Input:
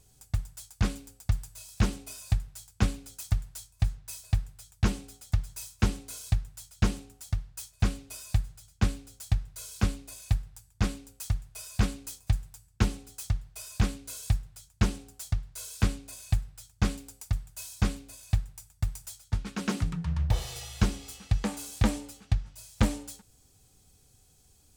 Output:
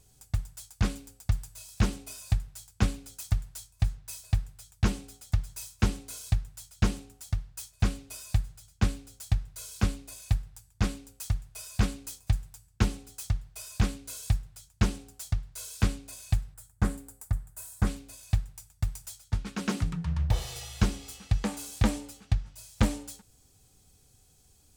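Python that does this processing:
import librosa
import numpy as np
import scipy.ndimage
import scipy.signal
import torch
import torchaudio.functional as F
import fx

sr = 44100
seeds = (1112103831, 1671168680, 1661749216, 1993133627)

y = fx.band_shelf(x, sr, hz=3800.0, db=-10.5, octaves=1.7, at=(16.54, 17.87))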